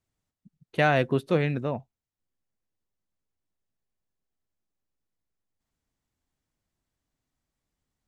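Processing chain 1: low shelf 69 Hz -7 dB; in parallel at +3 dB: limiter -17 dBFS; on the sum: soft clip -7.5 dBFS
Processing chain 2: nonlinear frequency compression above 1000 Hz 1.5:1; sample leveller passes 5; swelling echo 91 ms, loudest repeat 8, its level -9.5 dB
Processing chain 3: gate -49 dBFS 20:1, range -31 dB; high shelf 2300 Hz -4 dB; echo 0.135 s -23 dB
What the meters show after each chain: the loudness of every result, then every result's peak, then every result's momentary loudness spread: -22.0, -18.0, -26.0 LUFS; -8.5, -4.0, -10.0 dBFS; 10, 19, 12 LU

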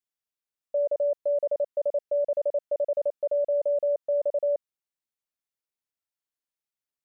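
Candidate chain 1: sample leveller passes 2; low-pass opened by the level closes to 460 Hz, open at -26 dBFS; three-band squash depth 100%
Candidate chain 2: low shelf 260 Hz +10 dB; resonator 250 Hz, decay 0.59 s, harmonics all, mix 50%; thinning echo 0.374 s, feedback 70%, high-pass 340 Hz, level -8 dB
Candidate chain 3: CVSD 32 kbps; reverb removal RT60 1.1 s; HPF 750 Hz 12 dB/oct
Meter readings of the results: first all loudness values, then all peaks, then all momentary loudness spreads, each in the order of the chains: -26.0, -32.0, -35.5 LUFS; -11.0, -23.5, -25.5 dBFS; 3, 16, 3 LU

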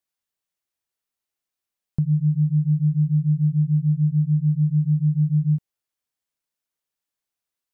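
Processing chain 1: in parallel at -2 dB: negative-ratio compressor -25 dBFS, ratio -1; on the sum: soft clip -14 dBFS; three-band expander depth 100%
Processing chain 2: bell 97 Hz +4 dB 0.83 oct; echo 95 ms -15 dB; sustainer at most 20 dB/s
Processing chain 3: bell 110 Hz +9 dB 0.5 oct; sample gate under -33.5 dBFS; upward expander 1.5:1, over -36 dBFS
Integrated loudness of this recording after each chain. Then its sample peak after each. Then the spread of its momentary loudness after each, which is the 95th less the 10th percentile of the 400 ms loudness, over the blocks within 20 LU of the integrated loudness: -21.0, -18.0, -19.5 LUFS; -15.0, -11.5, -10.0 dBFS; 3, 3, 3 LU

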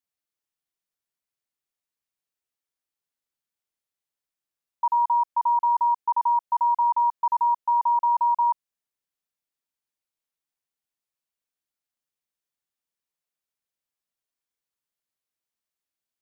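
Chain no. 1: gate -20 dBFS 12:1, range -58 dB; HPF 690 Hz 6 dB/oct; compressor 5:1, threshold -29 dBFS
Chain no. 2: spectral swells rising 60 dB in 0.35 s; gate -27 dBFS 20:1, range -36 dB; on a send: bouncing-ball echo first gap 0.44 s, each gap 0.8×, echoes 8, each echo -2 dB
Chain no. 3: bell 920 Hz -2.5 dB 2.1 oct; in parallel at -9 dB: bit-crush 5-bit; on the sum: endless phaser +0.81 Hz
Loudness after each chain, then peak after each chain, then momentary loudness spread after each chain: -33.5, -19.0, -25.0 LUFS; -26.5, -9.5, -16.5 dBFS; 3, 8, 13 LU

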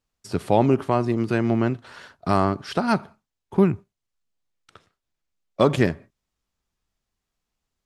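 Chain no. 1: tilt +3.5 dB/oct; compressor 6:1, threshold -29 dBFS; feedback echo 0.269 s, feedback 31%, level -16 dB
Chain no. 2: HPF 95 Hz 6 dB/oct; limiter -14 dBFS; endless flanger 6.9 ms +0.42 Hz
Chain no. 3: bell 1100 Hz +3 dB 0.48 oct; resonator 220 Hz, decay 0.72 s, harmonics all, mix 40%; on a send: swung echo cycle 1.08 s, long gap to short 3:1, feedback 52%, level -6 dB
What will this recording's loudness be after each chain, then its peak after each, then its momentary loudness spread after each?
-35.0, -31.0, -27.0 LUFS; -12.0, -14.5, -7.0 dBFS; 18, 10, 14 LU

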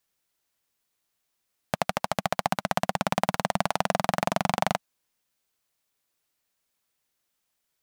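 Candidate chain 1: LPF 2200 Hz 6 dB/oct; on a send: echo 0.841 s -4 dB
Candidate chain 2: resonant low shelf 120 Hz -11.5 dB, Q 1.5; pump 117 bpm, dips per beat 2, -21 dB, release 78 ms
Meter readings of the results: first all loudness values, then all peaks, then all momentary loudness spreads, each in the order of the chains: -28.5, -28.5 LUFS; -4.0, -5.5 dBFS; 6, 5 LU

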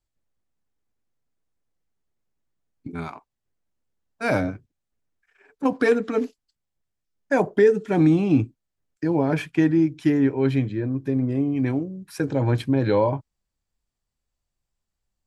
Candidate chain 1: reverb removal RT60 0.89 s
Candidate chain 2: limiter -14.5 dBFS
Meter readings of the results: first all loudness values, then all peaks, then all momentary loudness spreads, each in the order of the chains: -23.5, -25.5 LUFS; -8.0, -14.5 dBFS; 16, 11 LU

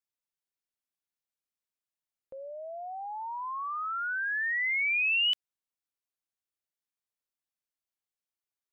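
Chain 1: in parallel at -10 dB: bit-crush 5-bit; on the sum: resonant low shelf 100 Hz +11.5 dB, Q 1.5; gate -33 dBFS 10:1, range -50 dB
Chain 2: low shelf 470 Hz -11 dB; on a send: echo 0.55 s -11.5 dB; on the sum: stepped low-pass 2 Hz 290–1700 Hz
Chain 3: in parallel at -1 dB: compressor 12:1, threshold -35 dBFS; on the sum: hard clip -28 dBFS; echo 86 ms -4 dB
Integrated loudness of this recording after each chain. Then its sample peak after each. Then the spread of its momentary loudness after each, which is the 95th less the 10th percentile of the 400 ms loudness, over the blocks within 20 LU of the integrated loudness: -24.0, -34.5, -28.0 LUFS; -20.0, -22.0, -23.5 dBFS; 14, 20, 11 LU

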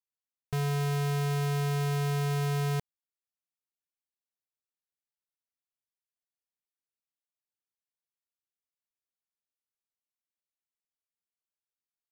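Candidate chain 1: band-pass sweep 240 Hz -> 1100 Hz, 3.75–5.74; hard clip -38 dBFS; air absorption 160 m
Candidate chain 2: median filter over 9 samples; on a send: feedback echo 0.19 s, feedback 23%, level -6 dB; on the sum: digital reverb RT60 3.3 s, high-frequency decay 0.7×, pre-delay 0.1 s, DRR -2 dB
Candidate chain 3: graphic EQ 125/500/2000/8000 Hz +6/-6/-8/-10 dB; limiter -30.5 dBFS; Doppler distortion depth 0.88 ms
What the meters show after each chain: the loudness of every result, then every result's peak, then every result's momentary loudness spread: -42.0, -24.5, -35.5 LUFS; -38.0, -17.0, -30.5 dBFS; 3, 15, 3 LU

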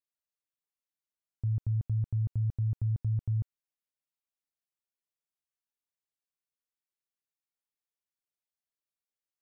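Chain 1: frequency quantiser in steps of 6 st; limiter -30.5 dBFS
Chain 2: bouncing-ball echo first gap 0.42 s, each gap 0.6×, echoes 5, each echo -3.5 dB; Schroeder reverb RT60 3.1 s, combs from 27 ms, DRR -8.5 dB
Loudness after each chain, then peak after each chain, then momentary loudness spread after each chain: -37.5, -29.0 LUFS; -30.5, -16.0 dBFS; 3, 14 LU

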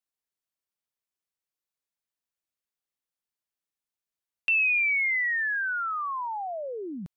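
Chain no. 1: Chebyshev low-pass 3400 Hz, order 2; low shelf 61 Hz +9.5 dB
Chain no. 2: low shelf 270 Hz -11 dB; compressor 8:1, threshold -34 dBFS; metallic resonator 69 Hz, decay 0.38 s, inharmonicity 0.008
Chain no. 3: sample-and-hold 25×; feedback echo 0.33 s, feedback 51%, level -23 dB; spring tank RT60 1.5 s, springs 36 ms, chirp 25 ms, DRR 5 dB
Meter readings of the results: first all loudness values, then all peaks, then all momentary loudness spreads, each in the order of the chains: -25.0, -43.0, -26.5 LUFS; -19.0, -32.5, -13.0 dBFS; 14, 7, 10 LU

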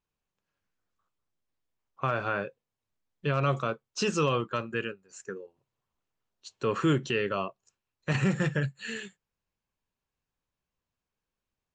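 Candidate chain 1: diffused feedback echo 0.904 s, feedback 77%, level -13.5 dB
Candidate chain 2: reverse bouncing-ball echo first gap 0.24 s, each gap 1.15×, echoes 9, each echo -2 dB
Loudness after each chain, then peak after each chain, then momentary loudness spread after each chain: -31.5, -28.0 LUFS; -14.0, -12.0 dBFS; 17, 13 LU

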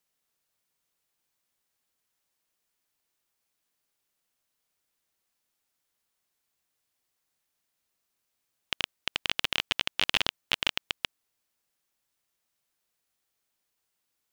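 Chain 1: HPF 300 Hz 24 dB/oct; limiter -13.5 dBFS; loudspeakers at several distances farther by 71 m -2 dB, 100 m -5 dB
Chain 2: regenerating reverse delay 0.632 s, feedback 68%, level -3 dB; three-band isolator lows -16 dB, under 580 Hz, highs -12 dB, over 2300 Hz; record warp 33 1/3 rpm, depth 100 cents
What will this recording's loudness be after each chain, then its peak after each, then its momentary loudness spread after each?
-33.0, -35.5 LUFS; -13.5, -10.5 dBFS; 11, 16 LU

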